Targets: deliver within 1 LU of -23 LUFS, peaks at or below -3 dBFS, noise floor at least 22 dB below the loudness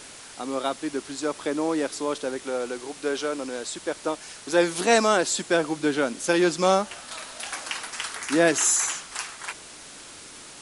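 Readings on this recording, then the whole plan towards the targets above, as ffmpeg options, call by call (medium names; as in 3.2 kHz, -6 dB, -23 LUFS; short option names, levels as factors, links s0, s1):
noise floor -44 dBFS; noise floor target -48 dBFS; loudness -25.5 LUFS; peak level -6.5 dBFS; loudness target -23.0 LUFS
-> -af "afftdn=nr=6:nf=-44"
-af "volume=1.33"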